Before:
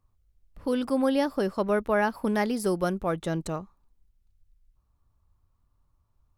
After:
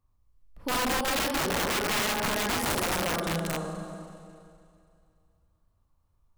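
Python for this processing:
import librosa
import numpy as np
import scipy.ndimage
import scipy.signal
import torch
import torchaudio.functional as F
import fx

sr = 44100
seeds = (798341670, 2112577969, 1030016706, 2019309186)

y = fx.rev_schroeder(x, sr, rt60_s=2.4, comb_ms=32, drr_db=-1.5)
y = (np.mod(10.0 ** (19.0 / 20.0) * y + 1.0, 2.0) - 1.0) / 10.0 ** (19.0 / 20.0)
y = y * librosa.db_to_amplitude(-3.5)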